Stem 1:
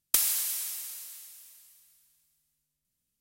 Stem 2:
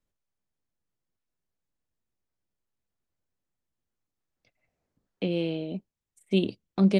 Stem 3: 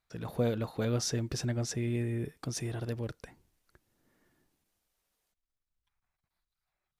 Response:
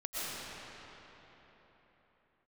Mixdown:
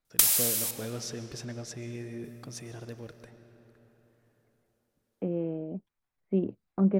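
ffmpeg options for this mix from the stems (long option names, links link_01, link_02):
-filter_complex "[0:a]adelay=50,volume=2dB,asplit=3[link_01][link_02][link_03];[link_01]atrim=end=0.71,asetpts=PTS-STARTPTS,afade=type=out:start_time=0.706:duration=0.004:curve=hsin[link_04];[link_02]atrim=start=0.71:end=2.24,asetpts=PTS-STARTPTS,volume=0[link_05];[link_03]atrim=start=2.24,asetpts=PTS-STARTPTS,afade=type=in:duration=0.004:curve=hsin[link_06];[link_04][link_05][link_06]concat=n=3:v=0:a=1,asplit=2[link_07][link_08];[link_08]volume=-15dB[link_09];[1:a]lowpass=frequency=1500:width=0.5412,lowpass=frequency=1500:width=1.3066,volume=-3dB[link_10];[2:a]equalizer=frequency=66:width=0.65:gain=-7.5,volume=-5.5dB,asplit=2[link_11][link_12];[link_12]volume=-14.5dB[link_13];[3:a]atrim=start_sample=2205[link_14];[link_09][link_13]amix=inputs=2:normalize=0[link_15];[link_15][link_14]afir=irnorm=-1:irlink=0[link_16];[link_07][link_10][link_11][link_16]amix=inputs=4:normalize=0"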